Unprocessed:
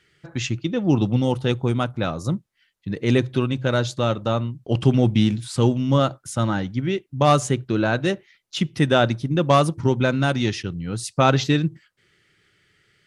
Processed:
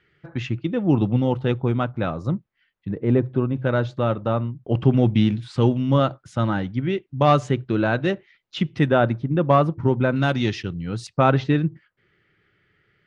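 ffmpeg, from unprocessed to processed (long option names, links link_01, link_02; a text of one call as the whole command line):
ffmpeg -i in.wav -af "asetnsamples=nb_out_samples=441:pad=0,asendcmd='2.91 lowpass f 1100;3.56 lowpass f 2000;4.97 lowpass f 3200;8.88 lowpass f 1800;10.16 lowpass f 4400;11.07 lowpass f 2100',lowpass=2400" out.wav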